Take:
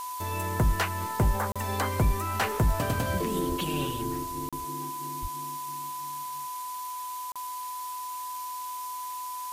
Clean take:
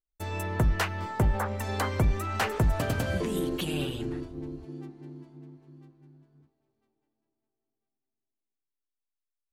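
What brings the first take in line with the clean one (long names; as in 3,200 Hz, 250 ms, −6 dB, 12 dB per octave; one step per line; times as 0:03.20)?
notch filter 1,000 Hz, Q 30
0:03.48–0:03.60: high-pass filter 140 Hz 24 dB per octave
0:05.21–0:05.33: high-pass filter 140 Hz 24 dB per octave
repair the gap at 0:01.52/0:04.49/0:07.32, 36 ms
noise reduction from a noise print 30 dB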